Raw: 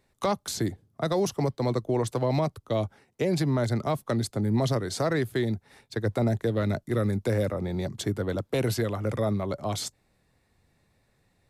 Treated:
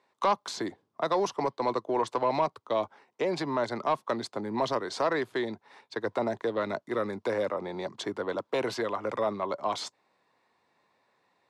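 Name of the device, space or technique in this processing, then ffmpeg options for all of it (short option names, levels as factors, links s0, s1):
intercom: -af "highpass=350,lowpass=4900,equalizer=f=1000:t=o:w=0.45:g=10.5,asoftclip=type=tanh:threshold=0.178"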